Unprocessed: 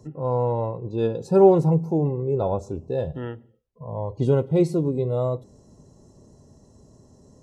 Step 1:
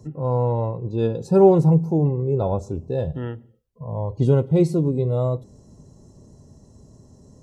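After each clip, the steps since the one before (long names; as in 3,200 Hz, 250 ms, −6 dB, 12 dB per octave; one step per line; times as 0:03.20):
bass and treble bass +5 dB, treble +2 dB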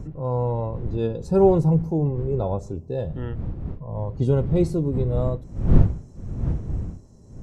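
wind on the microphone 110 Hz −23 dBFS
level −3 dB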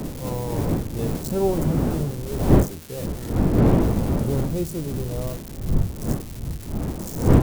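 spike at every zero crossing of −17 dBFS
wind on the microphone 260 Hz −17 dBFS
level −6 dB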